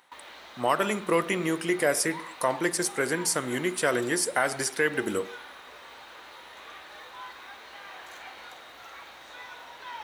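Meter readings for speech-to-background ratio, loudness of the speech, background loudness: 17.0 dB, −27.0 LKFS, −44.0 LKFS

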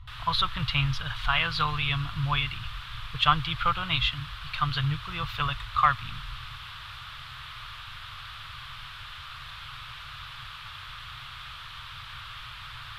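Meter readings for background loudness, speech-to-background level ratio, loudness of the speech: −40.5 LKFS, 13.0 dB, −27.5 LKFS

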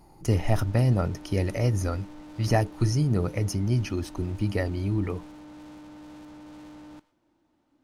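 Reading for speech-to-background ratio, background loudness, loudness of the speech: 18.5 dB, −45.5 LKFS, −27.0 LKFS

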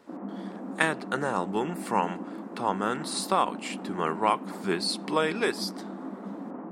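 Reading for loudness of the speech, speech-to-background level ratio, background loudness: −29.0 LKFS, 9.5 dB, −38.5 LKFS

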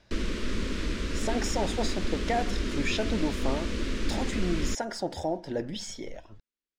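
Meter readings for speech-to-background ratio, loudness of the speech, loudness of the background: 0.0 dB, −33.0 LKFS, −33.0 LKFS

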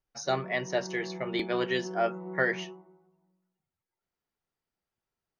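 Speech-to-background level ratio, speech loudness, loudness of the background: 10.5 dB, −31.0 LKFS, −41.5 LKFS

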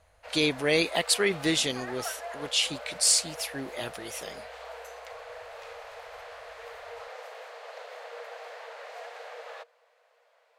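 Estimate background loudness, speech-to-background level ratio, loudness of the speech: −42.5 LKFS, 16.0 dB, −26.5 LKFS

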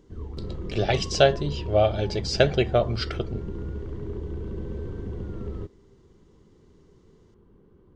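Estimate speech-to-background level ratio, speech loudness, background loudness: 11.0 dB, −24.5 LKFS, −35.5 LKFS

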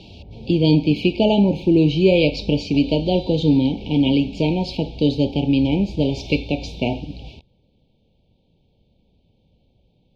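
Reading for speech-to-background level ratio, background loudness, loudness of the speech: 19.0 dB, −38.0 LKFS, −19.0 LKFS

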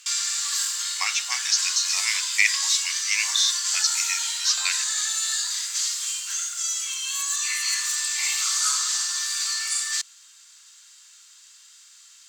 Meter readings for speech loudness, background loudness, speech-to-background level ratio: −24.0 LKFS, −23.5 LKFS, −0.5 dB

